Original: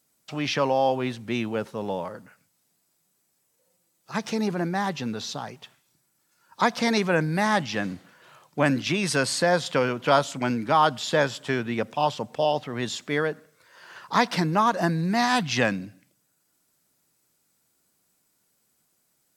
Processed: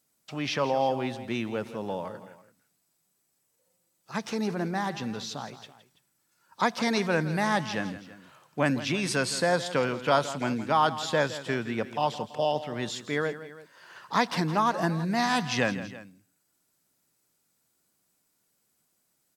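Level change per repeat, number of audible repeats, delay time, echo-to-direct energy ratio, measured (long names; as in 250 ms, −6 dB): −4.5 dB, 2, 166 ms, −12.5 dB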